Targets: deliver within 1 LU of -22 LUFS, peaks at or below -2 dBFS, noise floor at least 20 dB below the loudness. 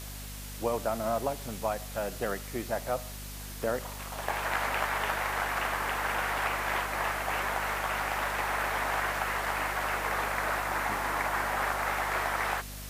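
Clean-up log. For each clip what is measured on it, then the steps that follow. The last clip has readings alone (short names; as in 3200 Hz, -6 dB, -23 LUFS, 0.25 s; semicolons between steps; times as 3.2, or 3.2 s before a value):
hum 50 Hz; harmonics up to 250 Hz; hum level -41 dBFS; noise floor -41 dBFS; noise floor target -51 dBFS; loudness -31.0 LUFS; peak -15.5 dBFS; loudness target -22.0 LUFS
-> notches 50/100/150/200/250 Hz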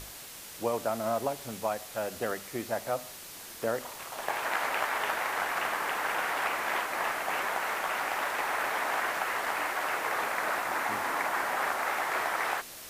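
hum none; noise floor -45 dBFS; noise floor target -51 dBFS
-> denoiser 6 dB, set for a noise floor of -45 dBFS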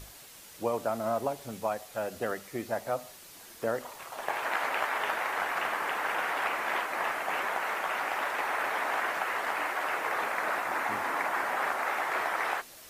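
noise floor -50 dBFS; noise floor target -52 dBFS
-> denoiser 6 dB, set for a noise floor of -50 dBFS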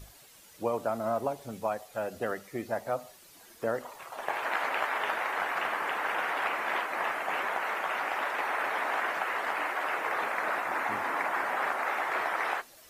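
noise floor -55 dBFS; loudness -31.5 LUFS; peak -16.5 dBFS; loudness target -22.0 LUFS
-> gain +9.5 dB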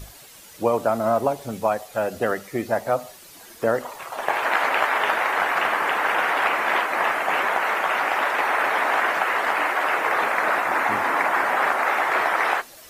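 loudness -22.0 LUFS; peak -7.0 dBFS; noise floor -46 dBFS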